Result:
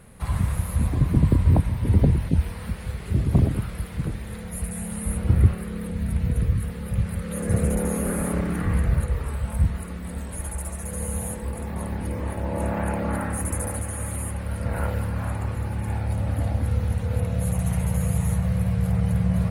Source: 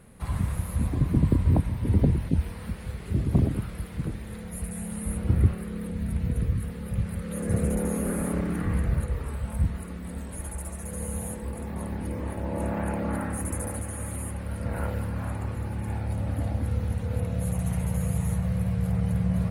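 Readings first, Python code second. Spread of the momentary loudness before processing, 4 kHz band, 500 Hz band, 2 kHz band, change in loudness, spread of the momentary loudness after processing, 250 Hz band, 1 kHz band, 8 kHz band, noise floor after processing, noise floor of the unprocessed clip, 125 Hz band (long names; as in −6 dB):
11 LU, +4.5 dB, +3.0 dB, +4.5 dB, +3.5 dB, 11 LU, +2.0 dB, +4.0 dB, +4.5 dB, −35 dBFS, −38 dBFS, +4.0 dB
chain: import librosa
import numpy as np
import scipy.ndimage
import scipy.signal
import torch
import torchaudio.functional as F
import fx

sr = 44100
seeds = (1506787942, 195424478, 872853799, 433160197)

y = fx.peak_eq(x, sr, hz=280.0, db=-4.0, octaves=1.3)
y = F.gain(torch.from_numpy(y), 4.5).numpy()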